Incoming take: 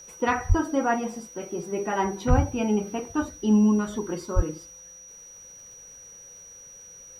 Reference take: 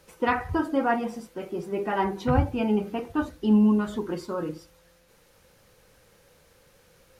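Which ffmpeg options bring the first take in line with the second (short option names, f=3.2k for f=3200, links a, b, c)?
-filter_complex "[0:a]adeclick=t=4,bandreject=f=5.8k:w=30,asplit=3[a][b][c];[a]afade=t=out:st=0.48:d=0.02[d];[b]highpass=f=140:w=0.5412,highpass=f=140:w=1.3066,afade=t=in:st=0.48:d=0.02,afade=t=out:st=0.6:d=0.02[e];[c]afade=t=in:st=0.6:d=0.02[f];[d][e][f]amix=inputs=3:normalize=0,asplit=3[g][h][i];[g]afade=t=out:st=2.29:d=0.02[j];[h]highpass=f=140:w=0.5412,highpass=f=140:w=1.3066,afade=t=in:st=2.29:d=0.02,afade=t=out:st=2.41:d=0.02[k];[i]afade=t=in:st=2.41:d=0.02[l];[j][k][l]amix=inputs=3:normalize=0,asplit=3[m][n][o];[m]afade=t=out:st=4.35:d=0.02[p];[n]highpass=f=140:w=0.5412,highpass=f=140:w=1.3066,afade=t=in:st=4.35:d=0.02,afade=t=out:st=4.47:d=0.02[q];[o]afade=t=in:st=4.47:d=0.02[r];[p][q][r]amix=inputs=3:normalize=0"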